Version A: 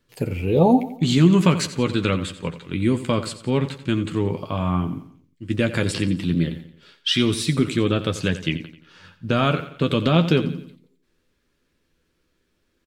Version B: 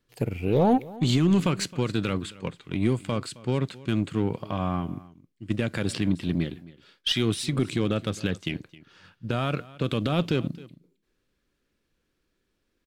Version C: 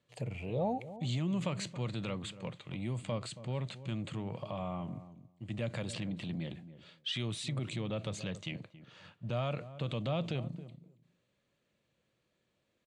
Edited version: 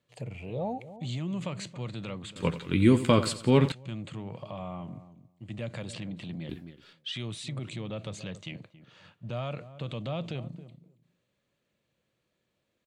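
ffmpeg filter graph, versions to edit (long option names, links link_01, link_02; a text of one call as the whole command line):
ffmpeg -i take0.wav -i take1.wav -i take2.wav -filter_complex "[2:a]asplit=3[link_01][link_02][link_03];[link_01]atrim=end=2.362[link_04];[0:a]atrim=start=2.358:end=3.722[link_05];[link_02]atrim=start=3.718:end=6.492[link_06];[1:a]atrim=start=6.488:end=6.932[link_07];[link_03]atrim=start=6.928[link_08];[link_04][link_05]acrossfade=duration=0.004:curve1=hsin:curve2=hsin[link_09];[link_09][link_06]acrossfade=duration=0.004:curve1=hsin:curve2=hsin[link_10];[link_10][link_07]acrossfade=duration=0.004:curve1=hsin:curve2=hsin[link_11];[link_11][link_08]acrossfade=duration=0.004:curve1=hsin:curve2=hsin" out.wav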